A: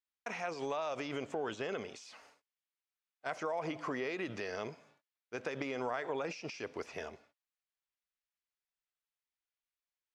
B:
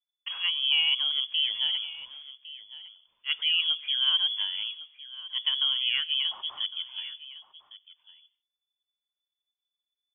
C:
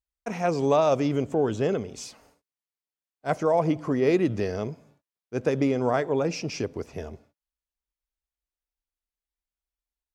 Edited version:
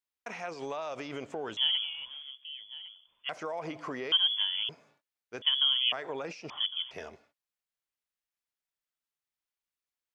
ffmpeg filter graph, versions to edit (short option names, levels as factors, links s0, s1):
-filter_complex "[1:a]asplit=4[s0][s1][s2][s3];[0:a]asplit=5[s4][s5][s6][s7][s8];[s4]atrim=end=1.572[s9];[s0]atrim=start=1.568:end=3.292[s10];[s5]atrim=start=3.288:end=4.122[s11];[s1]atrim=start=4.118:end=4.692[s12];[s6]atrim=start=4.688:end=5.422[s13];[s2]atrim=start=5.418:end=5.922[s14];[s7]atrim=start=5.918:end=6.502[s15];[s3]atrim=start=6.498:end=6.912[s16];[s8]atrim=start=6.908[s17];[s9][s10]acrossfade=d=0.004:c1=hsin:c2=hsin[s18];[s18][s11]acrossfade=d=0.004:c1=hsin:c2=hsin[s19];[s19][s12]acrossfade=d=0.004:c1=hsin:c2=hsin[s20];[s20][s13]acrossfade=d=0.004:c1=hsin:c2=hsin[s21];[s21][s14]acrossfade=d=0.004:c1=hsin:c2=hsin[s22];[s22][s15]acrossfade=d=0.004:c1=hsin:c2=hsin[s23];[s23][s16]acrossfade=d=0.004:c1=hsin:c2=hsin[s24];[s24][s17]acrossfade=d=0.004:c1=hsin:c2=hsin"